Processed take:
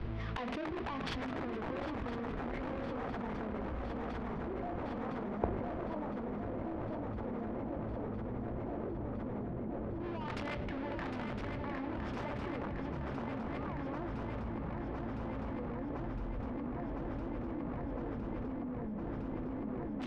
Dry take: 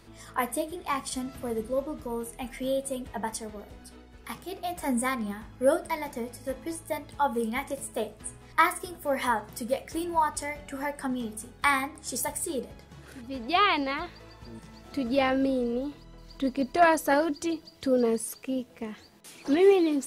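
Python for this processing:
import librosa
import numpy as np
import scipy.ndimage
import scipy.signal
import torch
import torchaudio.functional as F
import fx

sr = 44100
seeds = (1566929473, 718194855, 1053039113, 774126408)

y = fx.halfwave_hold(x, sr)
y = scipy.signal.sosfilt(scipy.signal.butter(4, 5400.0, 'lowpass', fs=sr, output='sos'), y)
y = fx.low_shelf(y, sr, hz=490.0, db=7.5)
y = fx.hum_notches(y, sr, base_hz=50, count=5)
y = fx.over_compress(y, sr, threshold_db=-30.0, ratio=-1.0)
y = (np.mod(10.0 ** (20.5 / 20.0) * y + 1.0, 2.0) - 1.0) / 10.0 ** (20.5 / 20.0)
y = fx.filter_lfo_lowpass(y, sr, shape='saw_down', hz=0.1, low_hz=310.0, high_hz=2600.0, q=0.96)
y = fx.echo_swing(y, sr, ms=1010, ratio=3, feedback_pct=80, wet_db=-6)
y = fx.level_steps(y, sr, step_db=22)
y = fx.band_widen(y, sr, depth_pct=70)
y = y * 10.0 ** (5.5 / 20.0)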